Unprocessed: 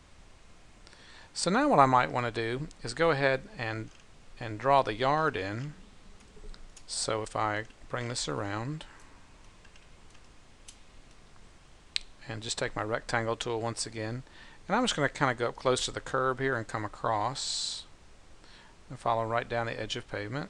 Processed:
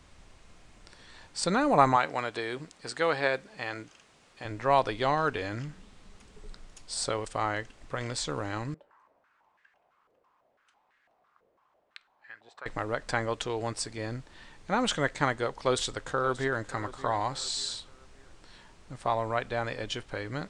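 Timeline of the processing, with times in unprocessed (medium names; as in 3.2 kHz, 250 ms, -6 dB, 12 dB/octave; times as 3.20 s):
1.96–4.45 s: high-pass 330 Hz 6 dB/octave
8.74–12.66 s: step-sequenced band-pass 6 Hz 520–1700 Hz
15.55–16.61 s: echo throw 580 ms, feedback 40%, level -16.5 dB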